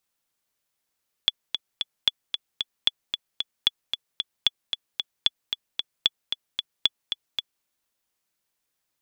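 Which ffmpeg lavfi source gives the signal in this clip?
ffmpeg -f lavfi -i "aevalsrc='pow(10,(-5-7.5*gte(mod(t,3*60/226),60/226))/20)*sin(2*PI*3420*mod(t,60/226))*exp(-6.91*mod(t,60/226)/0.03)':duration=6.37:sample_rate=44100" out.wav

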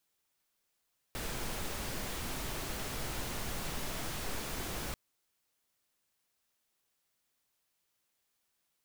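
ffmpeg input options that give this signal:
ffmpeg -f lavfi -i "anoisesrc=color=pink:amplitude=0.0646:duration=3.79:sample_rate=44100:seed=1" out.wav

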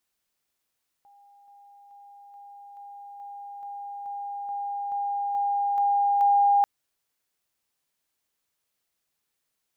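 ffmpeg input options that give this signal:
ffmpeg -f lavfi -i "aevalsrc='pow(10,(-52.5+3*floor(t/0.43))/20)*sin(2*PI*808*t)':duration=5.59:sample_rate=44100" out.wav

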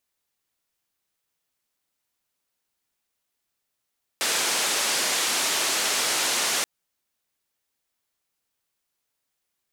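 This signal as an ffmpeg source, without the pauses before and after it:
ffmpeg -f lavfi -i "anoisesrc=color=white:duration=2.43:sample_rate=44100:seed=1,highpass=frequency=300,lowpass=frequency=8200,volume=-15.4dB" out.wav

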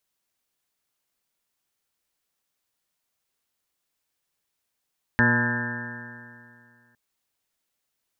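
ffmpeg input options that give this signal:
ffmpeg -f lavfi -i "aevalsrc='0.0708*pow(10,-3*t/2.31)*sin(2*PI*118.12*t)+0.0891*pow(10,-3*t/2.31)*sin(2*PI*236.99*t)+0.0224*pow(10,-3*t/2.31)*sin(2*PI*357.33*t)+0.0224*pow(10,-3*t/2.31)*sin(2*PI*479.86*t)+0.0224*pow(10,-3*t/2.31)*sin(2*PI*605.29*t)+0.00708*pow(10,-3*t/2.31)*sin(2*PI*734.27*t)+0.0316*pow(10,-3*t/2.31)*sin(2*PI*867.46*t)+0.0282*pow(10,-3*t/2.31)*sin(2*PI*1005.44*t)+0.00708*pow(10,-3*t/2.31)*sin(2*PI*1148.78*t)+0.0178*pow(10,-3*t/2.31)*sin(2*PI*1298*t)+0.0316*pow(10,-3*t/2.31)*sin(2*PI*1453.59*t)+0.1*pow(10,-3*t/2.31)*sin(2*PI*1615.98*t)+0.0944*pow(10,-3*t/2.31)*sin(2*PI*1785.58*t)':duration=1.76:sample_rate=44100" out.wav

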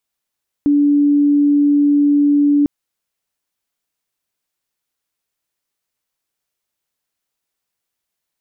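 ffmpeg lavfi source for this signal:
ffmpeg -f lavfi -i "aevalsrc='0.335*sin(2*PI*289*t)':duration=2:sample_rate=44100" out.wav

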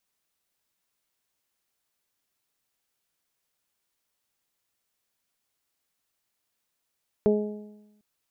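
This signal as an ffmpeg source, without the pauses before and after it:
ffmpeg -f lavfi -i "aevalsrc='0.0891*pow(10,-3*t/1.07)*sin(2*PI*210*t)+0.141*pow(10,-3*t/0.76)*sin(2*PI*420*t)+0.0398*pow(10,-3*t/0.82)*sin(2*PI*630*t)+0.00944*pow(10,-3*t/0.9)*sin(2*PI*840*t)':duration=0.75:sample_rate=44100" out.wav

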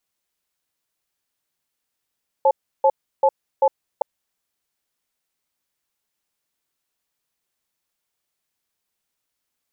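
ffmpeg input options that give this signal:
ffmpeg -f lavfi -i "aevalsrc='0.188*(sin(2*PI*540*t)+sin(2*PI*862*t))*clip(min(mod(t,0.39),0.06-mod(t,0.39))/0.005,0,1)':duration=1.57:sample_rate=44100" out.wav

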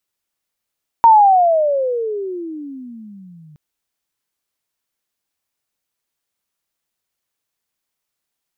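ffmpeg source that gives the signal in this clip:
ffmpeg -f lavfi -i "aevalsrc='pow(10,(-4-36*t/2.52)/20)*sin(2*PI*936*2.52/(-32*log(2)/12)*(exp(-32*log(2)/12*t/2.52)-1))':duration=2.52:sample_rate=44100" out.wav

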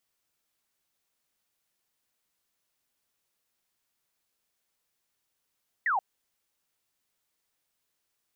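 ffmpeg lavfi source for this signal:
ffmpeg -f lavfi -i "aevalsrc='0.0668*clip(t/0.002,0,1)*clip((0.13-t)/0.002,0,1)*sin(2*PI*2000*0.13/log(720/2000)*(exp(log(720/2000)*t/0.13)-1))':duration=0.13:sample_rate=44100" out.wav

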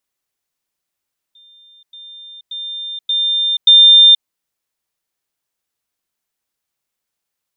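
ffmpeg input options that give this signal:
ffmpeg -f lavfi -i "aevalsrc='pow(10,(-43.5+10*floor(t/0.58))/20)*sin(2*PI*3600*t)*clip(min(mod(t,0.58),0.48-mod(t,0.58))/0.005,0,1)':duration=2.9:sample_rate=44100" out.wav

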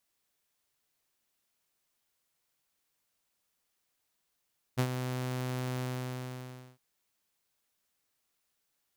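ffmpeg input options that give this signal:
ffmpeg -f lavfi -i "aevalsrc='0.0841*(2*mod(127*t,1)-1)':duration=2.009:sample_rate=44100,afade=type=in:duration=0.024,afade=type=out:start_time=0.024:duration=0.073:silence=0.376,afade=type=out:start_time=1.03:duration=0.979" out.wav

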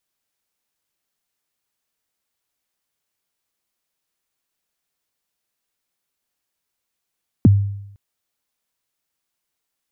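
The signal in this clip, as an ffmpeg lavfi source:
ffmpeg -f lavfi -i "aevalsrc='0.562*pow(10,-3*t/0.8)*sin(2*PI*(320*0.023/log(100/320)*(exp(log(100/320)*min(t,0.023)/0.023)-1)+100*max(t-0.023,0)))':duration=0.51:sample_rate=44100" out.wav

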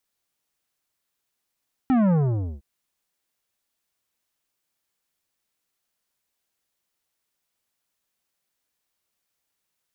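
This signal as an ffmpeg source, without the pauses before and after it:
ffmpeg -f lavfi -i "aevalsrc='0.133*clip((0.71-t)/0.5,0,1)*tanh(3.98*sin(2*PI*270*0.71/log(65/270)*(exp(log(65/270)*t/0.71)-1)))/tanh(3.98)':duration=0.71:sample_rate=44100" out.wav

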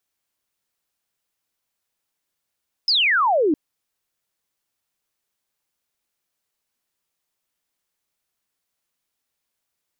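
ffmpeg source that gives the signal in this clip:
ffmpeg -f lavfi -i "aevalsrc='0.178*clip(t/0.002,0,1)*clip((0.66-t)/0.002,0,1)*sin(2*PI*5300*0.66/log(280/5300)*(exp(log(280/5300)*t/0.66)-1))':duration=0.66:sample_rate=44100" out.wav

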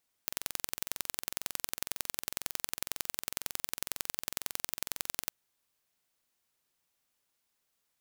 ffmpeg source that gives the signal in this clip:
ffmpeg -f lavfi -i "aevalsrc='0.631*eq(mod(n,2005),0)*(0.5+0.5*eq(mod(n,4010),0))':duration=5.04:sample_rate=44100" out.wav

